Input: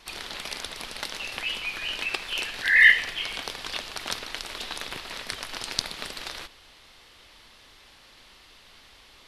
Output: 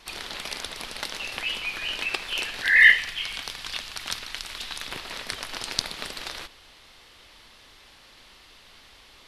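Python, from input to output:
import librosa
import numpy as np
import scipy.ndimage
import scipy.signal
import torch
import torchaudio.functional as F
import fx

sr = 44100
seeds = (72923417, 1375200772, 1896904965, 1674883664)

y = fx.peak_eq(x, sr, hz=450.0, db=-9.0, octaves=2.2, at=(2.96, 4.88))
y = y * librosa.db_to_amplitude(1.0)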